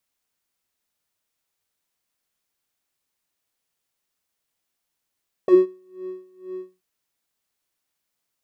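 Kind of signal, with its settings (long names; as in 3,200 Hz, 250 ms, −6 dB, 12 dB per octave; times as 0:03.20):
subtractive patch with tremolo F#4, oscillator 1 square, interval +7 semitones, oscillator 2 level −15 dB, sub −19 dB, filter bandpass, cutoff 170 Hz, filter envelope 2 octaves, filter decay 0.07 s, attack 1.2 ms, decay 0.18 s, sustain −24 dB, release 0.21 s, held 1.13 s, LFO 2.1 Hz, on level 22.5 dB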